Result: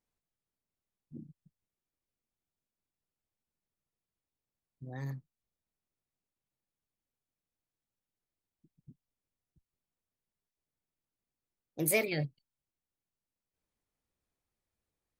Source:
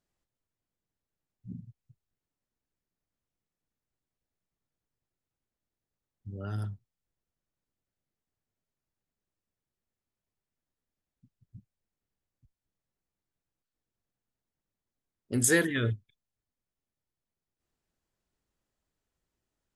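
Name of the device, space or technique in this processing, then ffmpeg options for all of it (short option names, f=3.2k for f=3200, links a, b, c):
nightcore: -af "asetrate=57330,aresample=44100,volume=-4.5dB"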